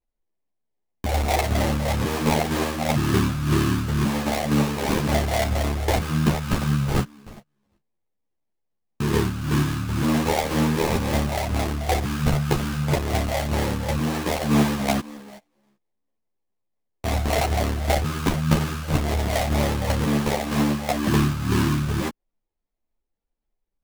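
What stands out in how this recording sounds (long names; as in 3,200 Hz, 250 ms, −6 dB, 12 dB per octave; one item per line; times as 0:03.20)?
phaser sweep stages 4, 2 Hz, lowest notch 320–1,400 Hz
aliases and images of a low sample rate 1,400 Hz, jitter 20%
a shimmering, thickened sound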